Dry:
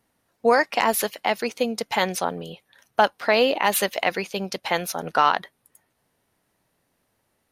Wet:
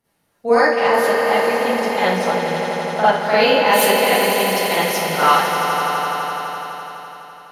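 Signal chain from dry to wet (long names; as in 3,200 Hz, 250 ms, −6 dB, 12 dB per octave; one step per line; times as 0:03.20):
0:00.61–0:03.15: low-pass filter 2,500 Hz 6 dB per octave
echo that builds up and dies away 84 ms, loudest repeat 5, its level −9.5 dB
four-comb reverb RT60 0.5 s, DRR −10 dB
level −6 dB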